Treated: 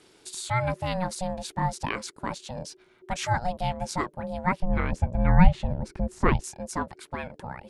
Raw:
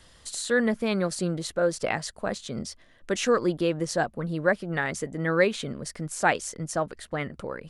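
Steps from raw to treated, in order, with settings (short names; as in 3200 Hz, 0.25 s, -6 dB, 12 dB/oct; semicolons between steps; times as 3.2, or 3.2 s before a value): ring modulator 370 Hz; 4.6–6.44 RIAA curve playback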